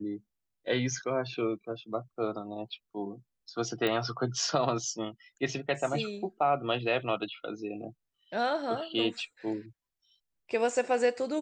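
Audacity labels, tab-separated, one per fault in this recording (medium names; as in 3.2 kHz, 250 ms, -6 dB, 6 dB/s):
3.870000	3.870000	pop -17 dBFS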